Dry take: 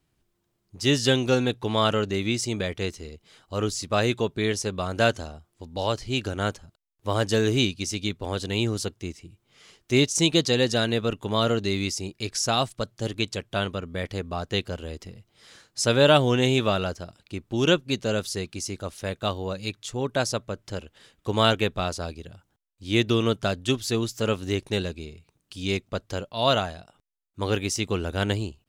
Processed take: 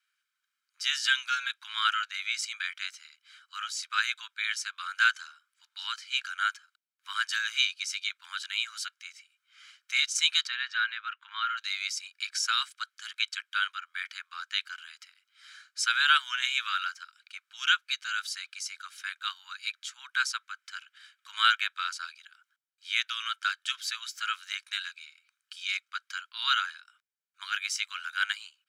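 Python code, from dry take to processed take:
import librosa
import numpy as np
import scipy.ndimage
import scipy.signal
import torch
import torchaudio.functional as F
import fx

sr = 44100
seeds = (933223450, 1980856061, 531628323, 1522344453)

y = fx.lowpass(x, sr, hz=2400.0, slope=12, at=(10.46, 11.56), fade=0.02)
y = scipy.signal.sosfilt(scipy.signal.butter(12, 1200.0, 'highpass', fs=sr, output='sos'), y)
y = fx.tilt_eq(y, sr, slope=-3.5)
y = y + 0.52 * np.pad(y, (int(1.3 * sr / 1000.0), 0))[:len(y)]
y = F.gain(torch.from_numpy(y), 4.5).numpy()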